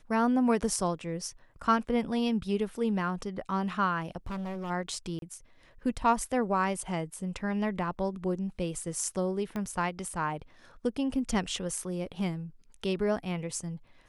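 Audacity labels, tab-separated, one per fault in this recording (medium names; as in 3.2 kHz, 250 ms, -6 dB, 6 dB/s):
4.260000	4.710000	clipped -33 dBFS
5.190000	5.220000	dropout 32 ms
9.560000	9.560000	pop -22 dBFS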